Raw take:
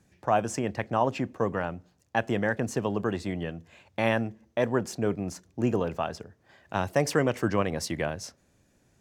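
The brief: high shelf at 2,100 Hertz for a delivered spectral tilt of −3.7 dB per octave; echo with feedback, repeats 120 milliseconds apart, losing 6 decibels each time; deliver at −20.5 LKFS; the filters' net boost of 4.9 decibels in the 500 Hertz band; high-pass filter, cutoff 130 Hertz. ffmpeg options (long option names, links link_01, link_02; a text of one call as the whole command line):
ffmpeg -i in.wav -af "highpass=130,equalizer=frequency=500:width_type=o:gain=6.5,highshelf=frequency=2100:gain=-8.5,aecho=1:1:120|240|360|480|600|720:0.501|0.251|0.125|0.0626|0.0313|0.0157,volume=5dB" out.wav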